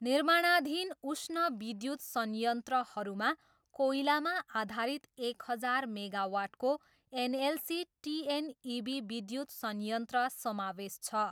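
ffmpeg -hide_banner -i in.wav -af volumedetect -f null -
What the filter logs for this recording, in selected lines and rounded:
mean_volume: -34.8 dB
max_volume: -16.3 dB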